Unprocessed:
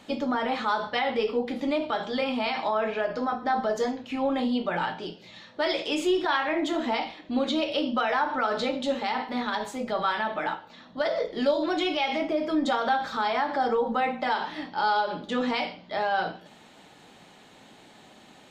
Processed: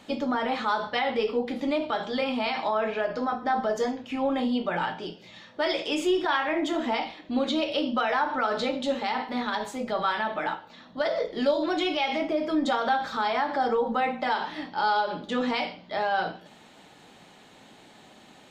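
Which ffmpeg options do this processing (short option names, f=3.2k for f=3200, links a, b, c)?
-filter_complex "[0:a]asettb=1/sr,asplit=3[a][b][c];[a]atrim=end=3.404[d];[b]atrim=start=3.4:end=7.06,asetpts=PTS-STARTPTS,afade=t=in:d=0.004:c=qsin,afade=t=out:st=3.656:d=0.004:c=qsin,bandreject=f=4.1k:w=12[e];[c]atrim=start=7.056[f];[d][e]acrossfade=d=0.004:c1=hsin:c2=qsin[g];[g][f]acrossfade=d=0.004:c1=qsin:c2=hsin"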